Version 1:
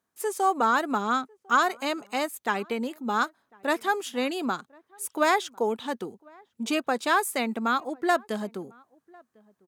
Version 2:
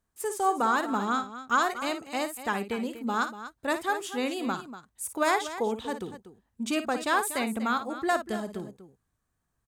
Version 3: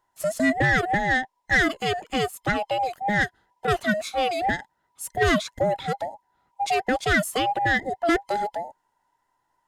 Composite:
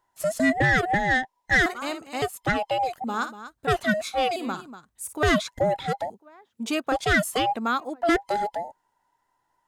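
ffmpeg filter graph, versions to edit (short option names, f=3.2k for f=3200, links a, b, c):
-filter_complex "[1:a]asplit=3[a][b][c];[0:a]asplit=2[d][e];[2:a]asplit=6[f][g][h][i][j][k];[f]atrim=end=1.662[l];[a]atrim=start=1.658:end=2.222[m];[g]atrim=start=2.218:end=3.042[n];[b]atrim=start=3.038:end=3.672[o];[h]atrim=start=3.668:end=4.362[p];[c]atrim=start=4.358:end=5.232[q];[i]atrim=start=5.228:end=6.102[r];[d]atrim=start=6.098:end=6.922[s];[j]atrim=start=6.918:end=7.562[t];[e]atrim=start=7.558:end=8.022[u];[k]atrim=start=8.018[v];[l][m]acrossfade=d=0.004:c1=hsin:c2=hsin[w];[w][n]acrossfade=d=0.004:c1=hsin:c2=hsin[x];[x][o]acrossfade=d=0.004:c1=hsin:c2=hsin[y];[y][p]acrossfade=d=0.004:c1=hsin:c2=hsin[z];[z][q]acrossfade=d=0.004:c1=hsin:c2=hsin[aa];[aa][r]acrossfade=d=0.004:c1=hsin:c2=hsin[ab];[ab][s]acrossfade=d=0.004:c1=hsin:c2=hsin[ac];[ac][t]acrossfade=d=0.004:c1=hsin:c2=hsin[ad];[ad][u]acrossfade=d=0.004:c1=hsin:c2=hsin[ae];[ae][v]acrossfade=d=0.004:c1=hsin:c2=hsin"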